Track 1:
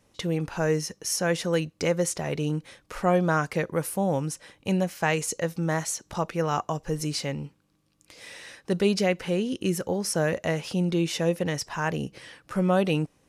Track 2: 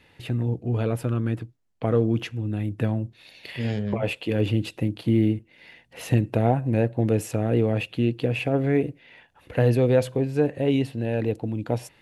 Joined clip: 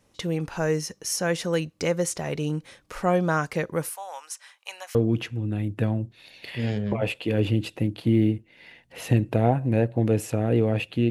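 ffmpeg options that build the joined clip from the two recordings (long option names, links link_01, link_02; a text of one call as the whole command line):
ffmpeg -i cue0.wav -i cue1.wav -filter_complex "[0:a]asettb=1/sr,asplit=3[link_01][link_02][link_03];[link_01]atrim=end=3.894[link_04];[link_02]atrim=start=3.89:end=4.95,asetpts=PTS-STARTPTS,afade=type=in:duration=0.004:curve=qsin,afade=type=out:start_time=1.056:duration=0.004:curve=qsin,highpass=frequency=870:width=0.5412,highpass=frequency=870:width=1.3066[link_05];[link_03]atrim=start=4.946[link_06];[link_04][link_05]acrossfade=duration=0.004:curve1=hsin:curve2=qsin[link_07];[link_07][link_06]acrossfade=duration=0.004:curve1=qsin:curve2=hsin,apad=whole_dur=11.1,atrim=end=11.1,atrim=end=4.952[link_08];[1:a]atrim=start=1.958:end=8.11[link_09];[link_08][link_09]acrossfade=duration=0.004:curve1=hsin:curve2=hsin" out.wav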